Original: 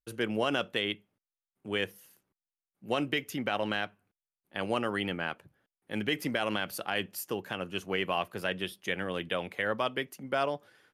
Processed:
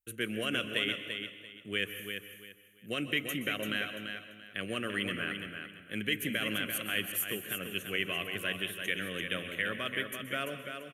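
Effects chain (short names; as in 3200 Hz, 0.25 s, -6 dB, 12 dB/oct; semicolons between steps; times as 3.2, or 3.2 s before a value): high shelf 2700 Hz +11 dB; fixed phaser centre 2100 Hz, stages 4; feedback echo 0.34 s, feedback 25%, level -7 dB; on a send at -10 dB: reverb RT60 0.80 s, pre-delay 0.119 s; on the sum: gain -3 dB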